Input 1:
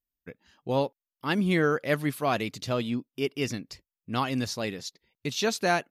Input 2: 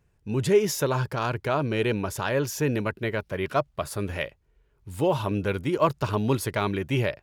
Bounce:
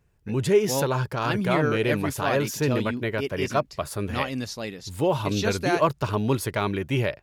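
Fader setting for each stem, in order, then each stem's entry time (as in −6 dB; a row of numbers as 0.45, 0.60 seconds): −1.5, +0.5 decibels; 0.00, 0.00 seconds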